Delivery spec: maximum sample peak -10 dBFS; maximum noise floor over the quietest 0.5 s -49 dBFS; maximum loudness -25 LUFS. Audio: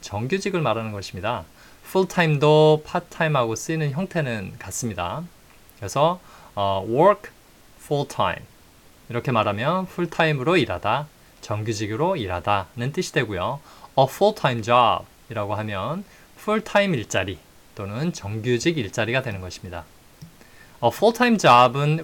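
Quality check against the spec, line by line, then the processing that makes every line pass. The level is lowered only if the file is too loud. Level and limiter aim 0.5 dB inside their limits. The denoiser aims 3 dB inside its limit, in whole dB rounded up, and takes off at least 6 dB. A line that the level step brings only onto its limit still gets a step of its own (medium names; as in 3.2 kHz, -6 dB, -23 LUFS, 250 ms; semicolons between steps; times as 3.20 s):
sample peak -5.5 dBFS: fail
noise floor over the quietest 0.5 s -51 dBFS: pass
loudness -22.0 LUFS: fail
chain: trim -3.5 dB; peak limiter -10.5 dBFS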